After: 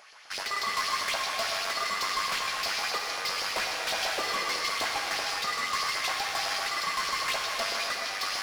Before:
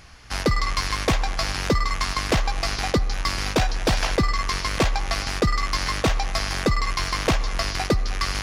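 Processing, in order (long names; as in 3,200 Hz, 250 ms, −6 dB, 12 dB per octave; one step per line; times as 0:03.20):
auto-filter high-pass saw up 7.9 Hz 520–4,300 Hz
gain into a clipping stage and back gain 22 dB
reverb whose tail is shaped and stops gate 470 ms flat, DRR −0.5 dB
level −5.5 dB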